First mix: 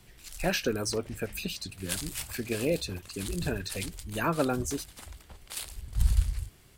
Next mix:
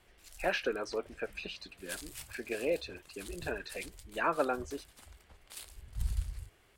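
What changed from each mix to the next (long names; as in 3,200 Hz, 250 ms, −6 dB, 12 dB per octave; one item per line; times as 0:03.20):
speech: add band-pass filter 450–2,700 Hz
background −9.5 dB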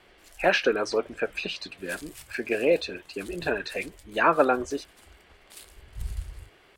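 speech +10.0 dB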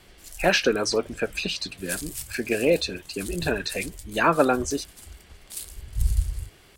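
master: add bass and treble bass +11 dB, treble +13 dB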